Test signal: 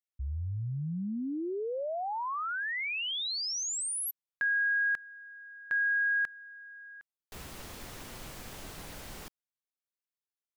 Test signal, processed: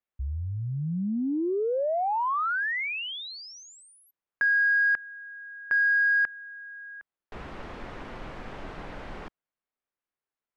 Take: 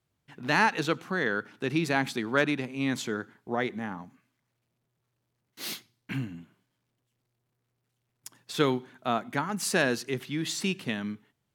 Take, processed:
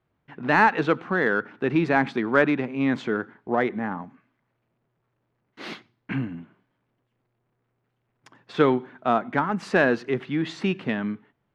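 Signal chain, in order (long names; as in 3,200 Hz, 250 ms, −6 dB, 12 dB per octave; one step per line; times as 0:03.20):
low-pass filter 1,900 Hz 12 dB per octave
parametric band 96 Hz −5.5 dB 1.8 octaves
in parallel at −11 dB: soft clipping −28 dBFS
on the sum: level +6 dB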